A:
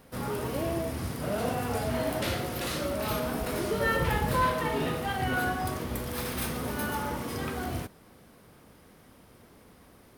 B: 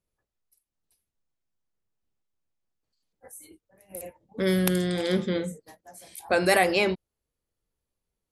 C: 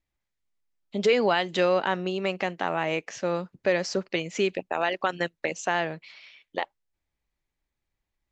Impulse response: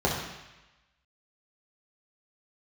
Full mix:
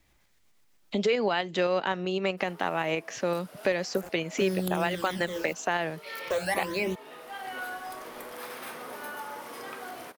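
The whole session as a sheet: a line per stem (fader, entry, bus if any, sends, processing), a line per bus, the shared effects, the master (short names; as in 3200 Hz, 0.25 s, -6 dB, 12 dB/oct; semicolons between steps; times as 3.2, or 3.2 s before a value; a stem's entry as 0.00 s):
-19.5 dB, 2.25 s, no send, HPF 520 Hz 12 dB/oct
-6.5 dB, 0.00 s, no send, requantised 6-bit, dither none; phaser stages 12, 0.3 Hz, lowest notch 120–4200 Hz
-0.5 dB, 0.00 s, no send, tremolo saw up 7.8 Hz, depth 35%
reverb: off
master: three-band squash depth 70%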